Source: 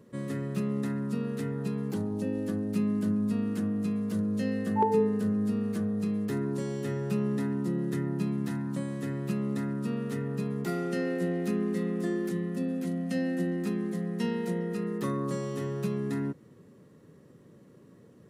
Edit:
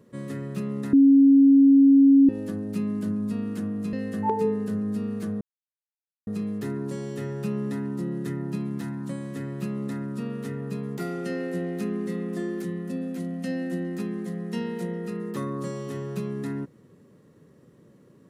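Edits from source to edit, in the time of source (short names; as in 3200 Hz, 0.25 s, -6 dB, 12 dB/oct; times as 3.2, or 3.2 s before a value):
0.93–2.29 bleep 275 Hz -11.5 dBFS
3.93–4.46 cut
5.94 insert silence 0.86 s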